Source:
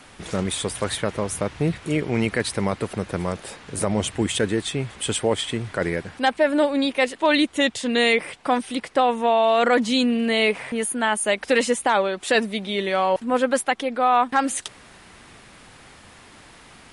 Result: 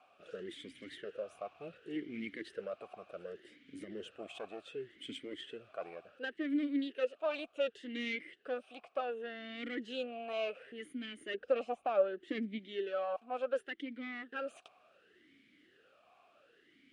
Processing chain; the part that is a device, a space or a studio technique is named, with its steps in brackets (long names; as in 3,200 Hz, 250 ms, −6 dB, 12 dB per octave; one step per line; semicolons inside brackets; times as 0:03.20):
0:11.34–0:12.59: spectral tilt −3 dB per octave
talk box (tube saturation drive 14 dB, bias 0.75; formant filter swept between two vowels a-i 0.68 Hz)
level −2 dB